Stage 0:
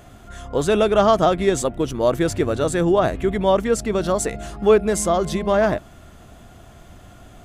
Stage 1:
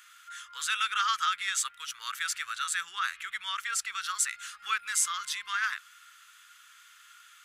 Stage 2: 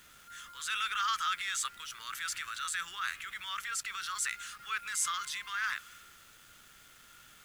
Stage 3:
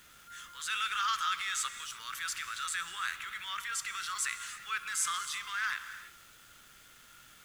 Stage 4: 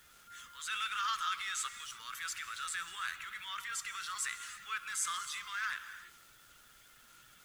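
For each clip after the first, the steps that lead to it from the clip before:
elliptic high-pass 1300 Hz, stop band 50 dB
transient shaper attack -5 dB, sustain +5 dB; bit-crush 9-bit; low shelf 250 Hz +12 dB; gain -3.5 dB
non-linear reverb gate 0.36 s flat, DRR 10 dB
bin magnitudes rounded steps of 15 dB; gain -3 dB

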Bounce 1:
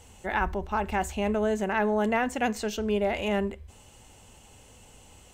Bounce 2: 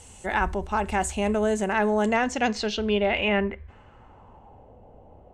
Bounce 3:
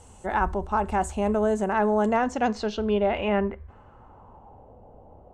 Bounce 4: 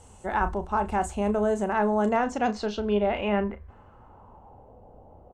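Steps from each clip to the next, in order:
low-pass sweep 9000 Hz -> 670 Hz, 1.88–4.76; gain +2.5 dB
resonant high shelf 1600 Hz -7 dB, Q 1.5
doubler 34 ms -11 dB; gain -1.5 dB

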